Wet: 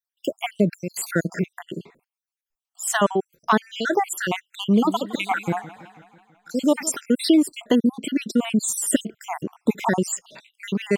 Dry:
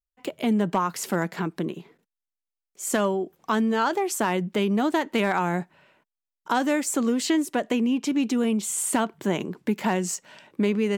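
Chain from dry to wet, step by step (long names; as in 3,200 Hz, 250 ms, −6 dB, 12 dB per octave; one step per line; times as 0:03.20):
time-frequency cells dropped at random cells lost 65%
0:04.57–0:06.95: feedback echo with a swinging delay time 164 ms, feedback 60%, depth 130 cents, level −17.5 dB
level +7 dB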